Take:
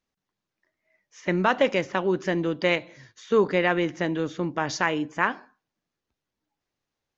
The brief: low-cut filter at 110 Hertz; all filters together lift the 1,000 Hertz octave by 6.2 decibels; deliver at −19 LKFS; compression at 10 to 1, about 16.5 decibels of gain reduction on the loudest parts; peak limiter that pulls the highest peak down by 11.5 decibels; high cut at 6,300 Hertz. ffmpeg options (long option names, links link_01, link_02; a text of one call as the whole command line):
ffmpeg -i in.wav -af "highpass=110,lowpass=6300,equalizer=frequency=1000:width_type=o:gain=7.5,acompressor=threshold=-30dB:ratio=10,volume=19.5dB,alimiter=limit=-6.5dB:level=0:latency=1" out.wav